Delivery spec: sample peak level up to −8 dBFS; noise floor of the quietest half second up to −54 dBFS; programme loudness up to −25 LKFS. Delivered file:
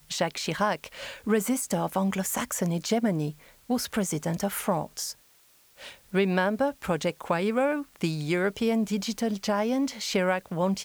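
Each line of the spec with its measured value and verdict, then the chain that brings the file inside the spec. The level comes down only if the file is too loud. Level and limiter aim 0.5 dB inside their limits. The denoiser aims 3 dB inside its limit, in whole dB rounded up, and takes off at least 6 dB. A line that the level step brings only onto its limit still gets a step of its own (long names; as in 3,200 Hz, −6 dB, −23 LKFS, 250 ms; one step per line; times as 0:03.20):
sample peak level −11.0 dBFS: in spec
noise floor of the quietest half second −60 dBFS: in spec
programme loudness −28.0 LKFS: in spec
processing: no processing needed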